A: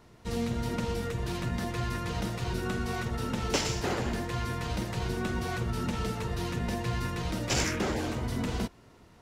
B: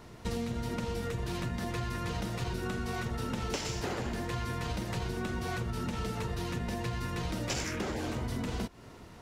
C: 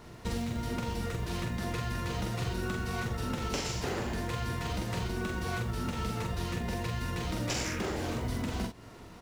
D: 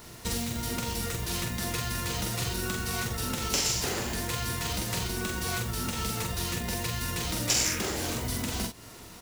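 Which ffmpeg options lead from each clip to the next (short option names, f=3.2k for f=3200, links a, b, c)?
-af "acompressor=threshold=-37dB:ratio=10,volume=6dB"
-filter_complex "[0:a]acrusher=bits=7:mode=log:mix=0:aa=0.000001,asplit=2[a][b];[b]adelay=44,volume=-4.5dB[c];[a][c]amix=inputs=2:normalize=0"
-af "crystalizer=i=4:c=0"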